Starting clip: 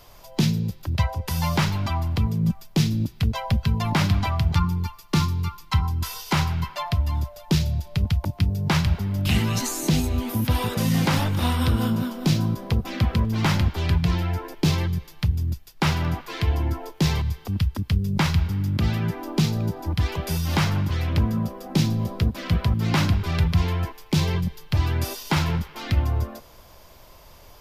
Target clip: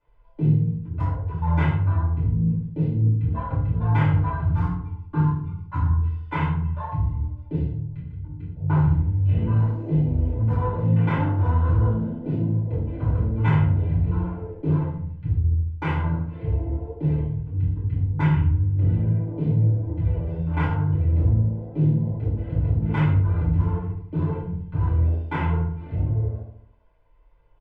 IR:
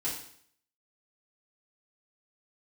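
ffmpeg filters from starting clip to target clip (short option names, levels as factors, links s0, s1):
-filter_complex "[0:a]lowpass=f=2500:w=0.5412,lowpass=f=2500:w=1.3066,afwtdn=0.0398,aecho=1:1:2:0.49,asettb=1/sr,asplit=3[s0][s1][s2];[s0]atrim=end=7.714[s3];[s1]atrim=start=7.71:end=8.56,asetpts=PTS-STARTPTS,afade=t=in:d=0.004:c=qsin,afade=t=out:st=0.846:d=0.004:c=qsin,acompressor=threshold=0.0355:ratio=6[s4];[s2]atrim=start=8.556[s5];[s3][s4]acrossfade=d=0.004:c1=hsin:c2=qsin[s6];[s6][s5]acrossfade=d=0.004:c1=qsin:c2=hsin,volume=4.22,asoftclip=hard,volume=0.237,flanger=delay=19:depth=4.8:speed=2.3,asoftclip=type=tanh:threshold=0.251,asplit=2[s7][s8];[s8]adelay=73,lowpass=f=1500:p=1,volume=0.531,asplit=2[s9][s10];[s10]adelay=73,lowpass=f=1500:p=1,volume=0.53,asplit=2[s11][s12];[s12]adelay=73,lowpass=f=1500:p=1,volume=0.53,asplit=2[s13][s14];[s14]adelay=73,lowpass=f=1500:p=1,volume=0.53,asplit=2[s15][s16];[s16]adelay=73,lowpass=f=1500:p=1,volume=0.53,asplit=2[s17][s18];[s18]adelay=73,lowpass=f=1500:p=1,volume=0.53,asplit=2[s19][s20];[s20]adelay=73,lowpass=f=1500:p=1,volume=0.53[s21];[s7][s9][s11][s13][s15][s17][s19][s21]amix=inputs=8:normalize=0[s22];[1:a]atrim=start_sample=2205,atrim=end_sample=6174[s23];[s22][s23]afir=irnorm=-1:irlink=0,volume=0.668"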